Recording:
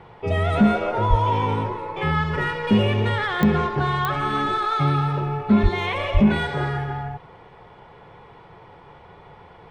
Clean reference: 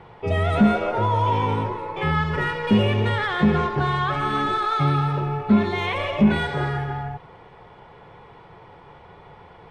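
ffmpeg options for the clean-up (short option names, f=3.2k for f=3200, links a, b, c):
-filter_complex "[0:a]adeclick=t=4,asplit=3[a][b][c];[a]afade=t=out:st=1.09:d=0.02[d];[b]highpass=f=140:w=0.5412,highpass=f=140:w=1.3066,afade=t=in:st=1.09:d=0.02,afade=t=out:st=1.21:d=0.02[e];[c]afade=t=in:st=1.21:d=0.02[f];[d][e][f]amix=inputs=3:normalize=0,asplit=3[g][h][i];[g]afade=t=out:st=5.62:d=0.02[j];[h]highpass=f=140:w=0.5412,highpass=f=140:w=1.3066,afade=t=in:st=5.62:d=0.02,afade=t=out:st=5.74:d=0.02[k];[i]afade=t=in:st=5.74:d=0.02[l];[j][k][l]amix=inputs=3:normalize=0,asplit=3[m][n][o];[m]afade=t=out:st=6.13:d=0.02[p];[n]highpass=f=140:w=0.5412,highpass=f=140:w=1.3066,afade=t=in:st=6.13:d=0.02,afade=t=out:st=6.25:d=0.02[q];[o]afade=t=in:st=6.25:d=0.02[r];[p][q][r]amix=inputs=3:normalize=0"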